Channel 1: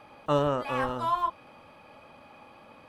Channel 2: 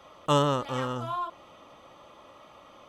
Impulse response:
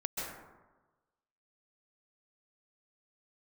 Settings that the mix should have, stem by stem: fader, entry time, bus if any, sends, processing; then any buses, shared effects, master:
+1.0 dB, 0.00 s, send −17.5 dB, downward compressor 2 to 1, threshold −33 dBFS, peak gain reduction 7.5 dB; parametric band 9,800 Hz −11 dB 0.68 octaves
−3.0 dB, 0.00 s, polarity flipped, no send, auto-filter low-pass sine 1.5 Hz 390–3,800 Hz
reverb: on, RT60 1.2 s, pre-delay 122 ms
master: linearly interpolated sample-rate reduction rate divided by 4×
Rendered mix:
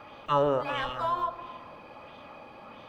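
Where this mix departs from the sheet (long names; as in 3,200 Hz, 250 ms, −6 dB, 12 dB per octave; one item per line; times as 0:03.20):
stem 1: send −17.5 dB → −11.5 dB
master: missing linearly interpolated sample-rate reduction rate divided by 4×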